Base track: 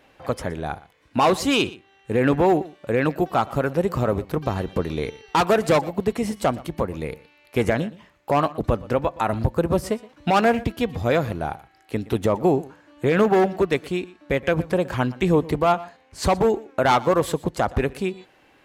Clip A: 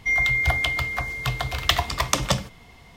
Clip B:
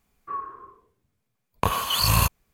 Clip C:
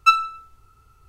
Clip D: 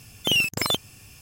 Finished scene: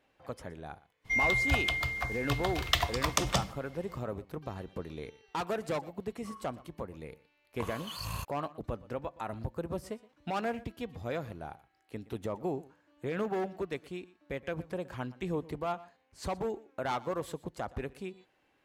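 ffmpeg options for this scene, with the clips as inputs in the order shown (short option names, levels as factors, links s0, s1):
-filter_complex "[0:a]volume=0.168[s0];[2:a]highshelf=f=12000:g=-10[s1];[1:a]atrim=end=2.96,asetpts=PTS-STARTPTS,volume=0.447,afade=t=in:d=0.02,afade=t=out:st=2.94:d=0.02,adelay=1040[s2];[s1]atrim=end=2.53,asetpts=PTS-STARTPTS,volume=0.133,afade=t=in:d=0.004:c=hsin,afade=t=out:st=2.526:d=0.004:c=hsin,adelay=5970[s3];[s0][s2][s3]amix=inputs=3:normalize=0"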